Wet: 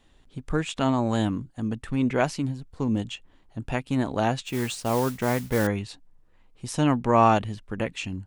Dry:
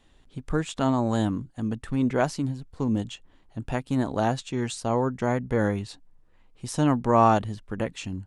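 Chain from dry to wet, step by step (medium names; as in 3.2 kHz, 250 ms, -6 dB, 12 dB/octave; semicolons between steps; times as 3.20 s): dynamic bell 2.5 kHz, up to +7 dB, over -51 dBFS, Q 1.9; 4.45–5.67 s: modulation noise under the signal 15 dB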